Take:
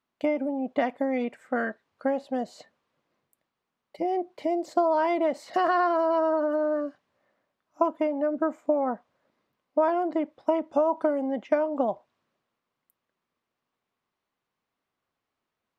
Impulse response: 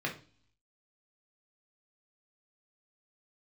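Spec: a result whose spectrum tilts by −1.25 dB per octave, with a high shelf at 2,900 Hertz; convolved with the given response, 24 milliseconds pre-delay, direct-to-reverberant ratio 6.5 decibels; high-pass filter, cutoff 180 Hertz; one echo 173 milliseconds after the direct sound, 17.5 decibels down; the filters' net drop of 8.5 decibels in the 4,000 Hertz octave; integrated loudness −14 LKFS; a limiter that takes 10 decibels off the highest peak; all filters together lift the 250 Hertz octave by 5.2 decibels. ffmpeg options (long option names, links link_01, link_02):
-filter_complex "[0:a]highpass=180,equalizer=frequency=250:width_type=o:gain=7.5,highshelf=frequency=2900:gain=-5.5,equalizer=frequency=4000:width_type=o:gain=-8.5,alimiter=limit=-17.5dB:level=0:latency=1,aecho=1:1:173:0.133,asplit=2[link_01][link_02];[1:a]atrim=start_sample=2205,adelay=24[link_03];[link_02][link_03]afir=irnorm=-1:irlink=0,volume=-12dB[link_04];[link_01][link_04]amix=inputs=2:normalize=0,volume=12.5dB"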